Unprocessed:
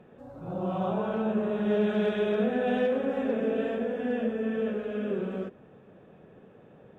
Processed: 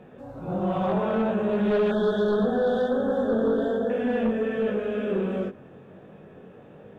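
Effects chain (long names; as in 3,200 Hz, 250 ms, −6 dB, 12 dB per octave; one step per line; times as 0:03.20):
chorus effect 1.3 Hz, delay 19.5 ms, depth 2.7 ms
sine wavefolder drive 5 dB, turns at −18 dBFS
0:01.91–0:03.90: Chebyshev band-stop filter 1,600–3,400 Hz, order 3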